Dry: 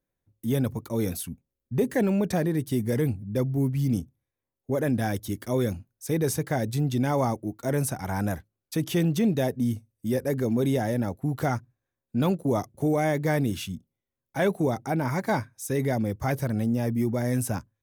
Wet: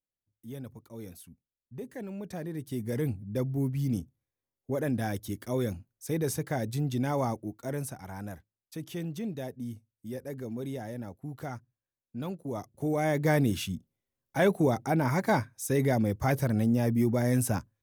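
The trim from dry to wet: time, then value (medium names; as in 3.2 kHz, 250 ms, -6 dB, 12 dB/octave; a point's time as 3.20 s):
2.07 s -16 dB
3.08 s -4.5 dB
7.39 s -4.5 dB
8.14 s -12 dB
12.42 s -12 dB
13.28 s 0 dB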